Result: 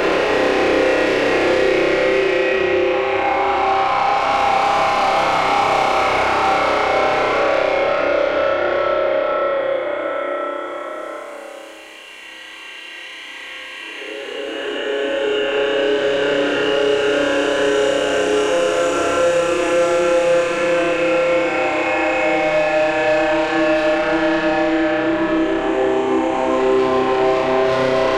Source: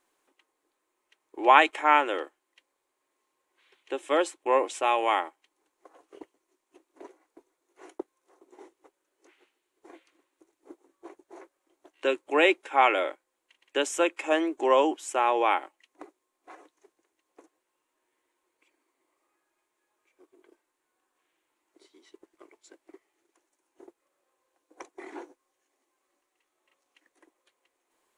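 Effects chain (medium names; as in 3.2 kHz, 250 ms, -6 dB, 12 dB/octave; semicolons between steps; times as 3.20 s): low-pass that closes with the level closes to 1.9 kHz, closed at -22 dBFS; in parallel at -3 dB: compression, threshold -31 dBFS, peak gain reduction 17.5 dB; on the sum: Paulstretch 12×, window 0.50 s, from 12.37 s; saturation -25.5 dBFS, distortion -8 dB; on a send: flutter echo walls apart 5.3 m, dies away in 1.3 s; on the sum: three bands compressed up and down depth 70%; trim +6.5 dB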